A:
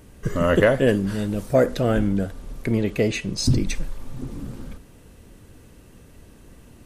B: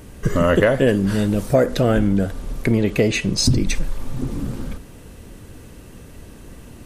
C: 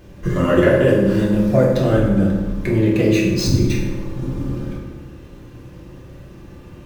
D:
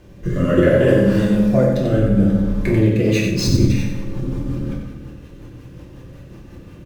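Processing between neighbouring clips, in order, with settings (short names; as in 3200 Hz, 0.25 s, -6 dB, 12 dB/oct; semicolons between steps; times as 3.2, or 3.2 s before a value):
compressor 2.5:1, threshold -22 dBFS, peak gain reduction 7 dB; gain +7.5 dB
median filter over 5 samples; reverb RT60 1.3 s, pre-delay 3 ms, DRR -5 dB; gain -5.5 dB
rotary speaker horn 0.65 Hz, later 5.5 Hz, at 2.64; echo 91 ms -6 dB; gain +1 dB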